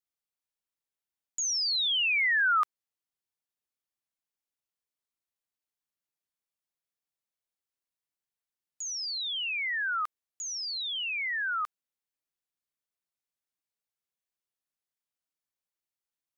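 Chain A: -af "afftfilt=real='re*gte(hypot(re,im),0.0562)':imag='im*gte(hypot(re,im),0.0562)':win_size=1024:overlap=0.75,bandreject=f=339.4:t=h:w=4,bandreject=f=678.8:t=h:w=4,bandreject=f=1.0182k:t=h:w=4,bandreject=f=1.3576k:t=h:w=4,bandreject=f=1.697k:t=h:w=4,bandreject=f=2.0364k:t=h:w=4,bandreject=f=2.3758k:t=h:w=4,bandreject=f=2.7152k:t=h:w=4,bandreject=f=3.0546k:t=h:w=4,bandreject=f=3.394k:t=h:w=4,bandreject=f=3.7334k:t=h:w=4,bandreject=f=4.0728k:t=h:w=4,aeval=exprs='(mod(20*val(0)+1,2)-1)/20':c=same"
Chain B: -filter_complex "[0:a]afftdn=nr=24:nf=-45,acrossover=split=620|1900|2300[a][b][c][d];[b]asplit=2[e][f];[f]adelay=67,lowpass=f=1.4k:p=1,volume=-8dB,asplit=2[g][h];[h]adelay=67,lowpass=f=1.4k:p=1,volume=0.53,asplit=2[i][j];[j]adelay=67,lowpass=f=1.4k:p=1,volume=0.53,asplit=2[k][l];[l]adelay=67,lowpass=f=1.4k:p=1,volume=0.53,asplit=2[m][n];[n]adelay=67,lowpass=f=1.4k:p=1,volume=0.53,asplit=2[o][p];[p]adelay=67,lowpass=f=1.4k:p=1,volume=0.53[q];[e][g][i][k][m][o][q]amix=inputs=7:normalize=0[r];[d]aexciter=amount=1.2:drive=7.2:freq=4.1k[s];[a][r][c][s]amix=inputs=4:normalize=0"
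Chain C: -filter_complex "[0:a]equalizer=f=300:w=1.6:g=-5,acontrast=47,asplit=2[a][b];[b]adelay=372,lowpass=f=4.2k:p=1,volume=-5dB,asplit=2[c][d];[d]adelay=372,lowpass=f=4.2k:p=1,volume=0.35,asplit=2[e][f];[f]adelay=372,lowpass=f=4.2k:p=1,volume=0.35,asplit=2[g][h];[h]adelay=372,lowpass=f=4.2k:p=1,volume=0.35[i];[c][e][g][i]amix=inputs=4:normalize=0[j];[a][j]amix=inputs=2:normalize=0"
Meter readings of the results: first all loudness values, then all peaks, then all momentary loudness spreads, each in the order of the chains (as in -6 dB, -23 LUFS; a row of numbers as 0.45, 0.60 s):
-29.5, -26.5, -22.0 LUFS; -26.0, -19.0, -11.5 dBFS; 11, 11, 16 LU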